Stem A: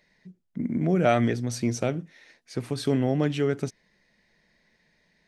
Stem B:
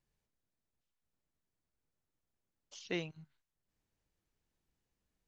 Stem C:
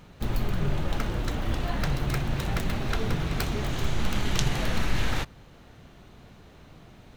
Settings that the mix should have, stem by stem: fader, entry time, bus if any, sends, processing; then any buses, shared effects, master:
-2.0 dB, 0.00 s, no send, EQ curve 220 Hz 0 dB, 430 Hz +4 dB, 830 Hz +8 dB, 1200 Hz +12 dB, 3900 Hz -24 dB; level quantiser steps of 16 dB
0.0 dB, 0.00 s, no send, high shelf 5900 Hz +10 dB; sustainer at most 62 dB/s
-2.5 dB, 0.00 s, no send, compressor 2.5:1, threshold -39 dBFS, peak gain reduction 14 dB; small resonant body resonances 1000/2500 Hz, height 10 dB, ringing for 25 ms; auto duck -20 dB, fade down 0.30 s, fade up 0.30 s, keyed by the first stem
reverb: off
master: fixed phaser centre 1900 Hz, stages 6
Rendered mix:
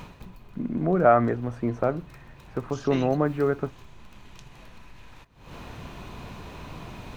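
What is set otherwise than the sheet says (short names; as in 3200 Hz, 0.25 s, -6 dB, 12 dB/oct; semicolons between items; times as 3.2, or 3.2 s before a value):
stem A: missing level quantiser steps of 16 dB; stem C -2.5 dB -> +9.5 dB; master: missing fixed phaser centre 1900 Hz, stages 6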